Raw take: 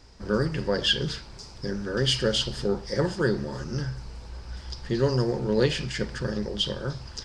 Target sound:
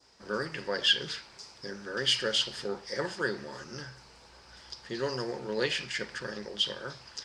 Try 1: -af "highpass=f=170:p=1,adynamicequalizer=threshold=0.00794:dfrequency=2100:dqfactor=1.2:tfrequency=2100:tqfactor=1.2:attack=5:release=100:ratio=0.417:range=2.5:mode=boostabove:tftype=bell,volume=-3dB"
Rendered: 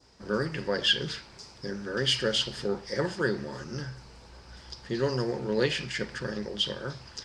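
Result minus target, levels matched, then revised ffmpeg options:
125 Hz band +8.0 dB
-af "highpass=f=640:p=1,adynamicequalizer=threshold=0.00794:dfrequency=2100:dqfactor=1.2:tfrequency=2100:tqfactor=1.2:attack=5:release=100:ratio=0.417:range=2.5:mode=boostabove:tftype=bell,volume=-3dB"

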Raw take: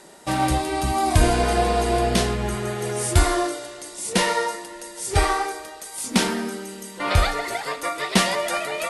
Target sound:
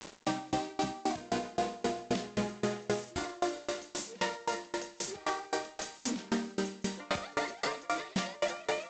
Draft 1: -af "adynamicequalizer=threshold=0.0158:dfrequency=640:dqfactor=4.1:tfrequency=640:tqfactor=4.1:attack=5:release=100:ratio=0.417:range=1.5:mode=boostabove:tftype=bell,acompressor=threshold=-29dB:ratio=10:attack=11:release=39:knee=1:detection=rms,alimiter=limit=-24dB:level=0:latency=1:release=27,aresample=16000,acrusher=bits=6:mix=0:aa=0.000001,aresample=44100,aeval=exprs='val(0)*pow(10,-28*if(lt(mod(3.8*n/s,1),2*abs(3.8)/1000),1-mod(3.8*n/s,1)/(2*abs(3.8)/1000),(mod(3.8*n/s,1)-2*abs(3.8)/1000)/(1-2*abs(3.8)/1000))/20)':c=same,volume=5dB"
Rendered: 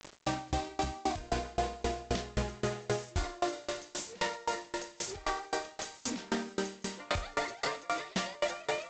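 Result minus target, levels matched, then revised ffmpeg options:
250 Hz band -3.0 dB
-af "adynamicequalizer=threshold=0.0158:dfrequency=640:dqfactor=4.1:tfrequency=640:tqfactor=4.1:attack=5:release=100:ratio=0.417:range=1.5:mode=boostabove:tftype=bell,acompressor=threshold=-29dB:ratio=10:attack=11:release=39:knee=1:detection=rms,highpass=f=200:t=q:w=1.9,alimiter=limit=-24dB:level=0:latency=1:release=27,aresample=16000,acrusher=bits=6:mix=0:aa=0.000001,aresample=44100,aeval=exprs='val(0)*pow(10,-28*if(lt(mod(3.8*n/s,1),2*abs(3.8)/1000),1-mod(3.8*n/s,1)/(2*abs(3.8)/1000),(mod(3.8*n/s,1)-2*abs(3.8)/1000)/(1-2*abs(3.8)/1000))/20)':c=same,volume=5dB"

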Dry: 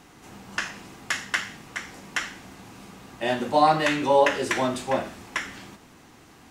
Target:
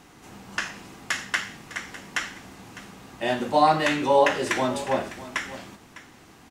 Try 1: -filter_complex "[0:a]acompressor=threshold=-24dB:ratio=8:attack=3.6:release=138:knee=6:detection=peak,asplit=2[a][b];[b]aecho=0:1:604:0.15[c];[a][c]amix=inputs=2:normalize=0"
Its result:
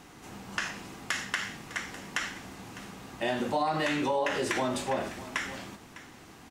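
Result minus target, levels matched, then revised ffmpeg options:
compressor: peak gain reduction +13 dB
-filter_complex "[0:a]asplit=2[a][b];[b]aecho=0:1:604:0.15[c];[a][c]amix=inputs=2:normalize=0"

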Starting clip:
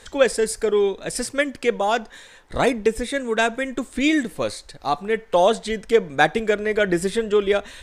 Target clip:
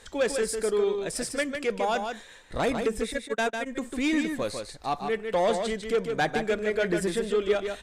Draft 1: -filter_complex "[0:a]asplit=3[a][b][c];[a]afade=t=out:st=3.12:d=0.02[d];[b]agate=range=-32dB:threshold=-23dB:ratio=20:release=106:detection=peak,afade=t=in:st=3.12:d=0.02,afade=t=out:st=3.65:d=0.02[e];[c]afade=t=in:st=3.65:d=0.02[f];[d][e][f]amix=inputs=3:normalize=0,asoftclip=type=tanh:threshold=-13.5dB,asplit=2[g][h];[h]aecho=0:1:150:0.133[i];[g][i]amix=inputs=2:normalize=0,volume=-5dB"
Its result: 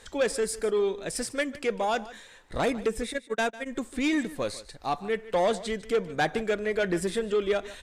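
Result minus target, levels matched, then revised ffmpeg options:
echo-to-direct -11.5 dB
-filter_complex "[0:a]asplit=3[a][b][c];[a]afade=t=out:st=3.12:d=0.02[d];[b]agate=range=-32dB:threshold=-23dB:ratio=20:release=106:detection=peak,afade=t=in:st=3.12:d=0.02,afade=t=out:st=3.65:d=0.02[e];[c]afade=t=in:st=3.65:d=0.02[f];[d][e][f]amix=inputs=3:normalize=0,asoftclip=type=tanh:threshold=-13.5dB,asplit=2[g][h];[h]aecho=0:1:150:0.501[i];[g][i]amix=inputs=2:normalize=0,volume=-5dB"

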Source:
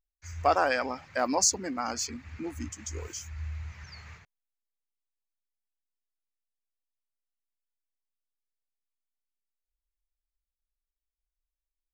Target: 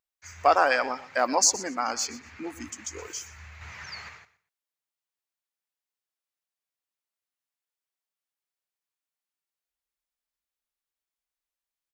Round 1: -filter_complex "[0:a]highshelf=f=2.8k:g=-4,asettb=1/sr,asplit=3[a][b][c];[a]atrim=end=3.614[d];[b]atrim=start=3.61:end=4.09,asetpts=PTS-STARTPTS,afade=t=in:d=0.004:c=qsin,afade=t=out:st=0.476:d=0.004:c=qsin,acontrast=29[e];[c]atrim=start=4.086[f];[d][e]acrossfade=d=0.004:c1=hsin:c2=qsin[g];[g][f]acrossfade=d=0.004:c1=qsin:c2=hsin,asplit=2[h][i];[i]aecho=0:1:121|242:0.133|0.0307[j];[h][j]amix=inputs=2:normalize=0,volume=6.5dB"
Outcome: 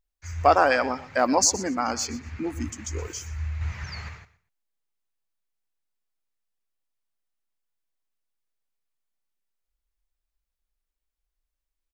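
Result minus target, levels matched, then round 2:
500 Hz band +3.0 dB
-filter_complex "[0:a]highpass=f=620:p=1,highshelf=f=2.8k:g=-4,asettb=1/sr,asplit=3[a][b][c];[a]atrim=end=3.614[d];[b]atrim=start=3.61:end=4.09,asetpts=PTS-STARTPTS,afade=t=in:d=0.004:c=qsin,afade=t=out:st=0.476:d=0.004:c=qsin,acontrast=29[e];[c]atrim=start=4.086[f];[d][e]acrossfade=d=0.004:c1=hsin:c2=qsin[g];[g][f]acrossfade=d=0.004:c1=qsin:c2=hsin,asplit=2[h][i];[i]aecho=0:1:121|242:0.133|0.0307[j];[h][j]amix=inputs=2:normalize=0,volume=6.5dB"

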